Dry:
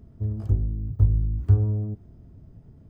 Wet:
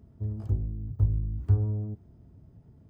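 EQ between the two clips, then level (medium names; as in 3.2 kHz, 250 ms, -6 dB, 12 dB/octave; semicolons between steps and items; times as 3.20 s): high-pass 49 Hz; peaking EQ 890 Hz +3 dB 0.34 oct; -4.5 dB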